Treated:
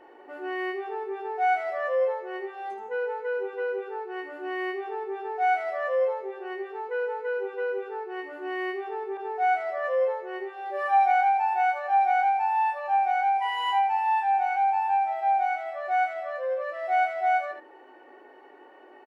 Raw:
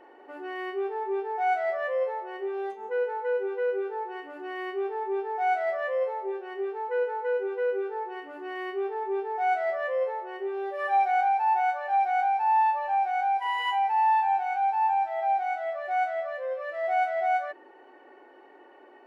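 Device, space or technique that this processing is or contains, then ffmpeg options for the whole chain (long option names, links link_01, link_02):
slapback doubling: -filter_complex "[0:a]asplit=3[link_01][link_02][link_03];[link_02]adelay=19,volume=-6dB[link_04];[link_03]adelay=78,volume=-7dB[link_05];[link_01][link_04][link_05]amix=inputs=3:normalize=0,asettb=1/sr,asplit=3[link_06][link_07][link_08];[link_06]atrim=end=9.174[link_09];[link_07]atrim=start=9.17:end=9.84,asetpts=PTS-STARTPTS,afade=type=in:duration=0.004:curve=qsin,afade=type=out:start_time=0.666:duration=0.004:curve=qsin,adynamicequalizer=threshold=0.0112:dfrequency=1900:dqfactor=0.7:tfrequency=1900:tqfactor=0.7:attack=5:release=100:ratio=0.375:range=2:mode=cutabove:tftype=highshelf[link_10];[link_08]atrim=start=9.836[link_11];[link_09][link_10]acrossfade=duration=0.004:curve1=hsin:curve2=qsin[link_12];[link_12][link_11]acrossfade=duration=0.004:curve1=qsin:curve2=hsin"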